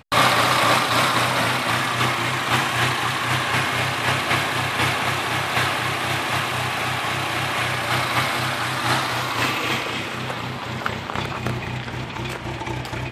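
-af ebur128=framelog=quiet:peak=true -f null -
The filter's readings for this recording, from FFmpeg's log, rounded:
Integrated loudness:
  I:         -21.4 LUFS
  Threshold: -31.4 LUFS
Loudness range:
  LRA:         5.8 LU
  Threshold: -41.6 LUFS
  LRA low:   -25.2 LUFS
  LRA high:  -19.5 LUFS
True peak:
  Peak:       -3.4 dBFS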